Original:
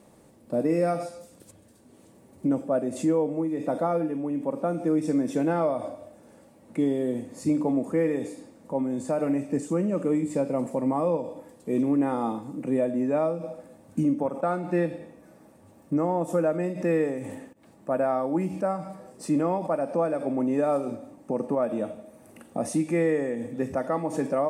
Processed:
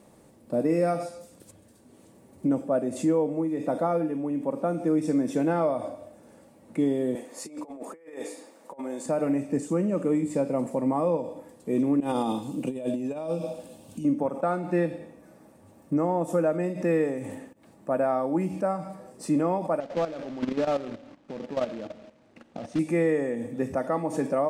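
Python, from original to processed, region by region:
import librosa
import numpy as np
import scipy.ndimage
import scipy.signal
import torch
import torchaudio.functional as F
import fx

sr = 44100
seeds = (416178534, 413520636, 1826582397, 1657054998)

y = fx.chain(x, sr, fx.highpass(hz=510.0, slope=12),
    fx.over_compress(threshold_db=-37.0, ratio=-0.5), at=(7.15, 9.06))
y = fx.chain(y, sr, fx.high_shelf_res(hz=2400.0, db=6.5, q=3.0),
    fx.over_compress(threshold_db=-28.0, ratio=-0.5),
    fx.notch(hz=1300.0, q=14.0), at=(12.0, 14.05))
y = fx.chain(y, sr, fx.quant_companded(bits=4),
    fx.air_absorb(metres=140.0),
    fx.level_steps(step_db=12), at=(19.8, 22.79))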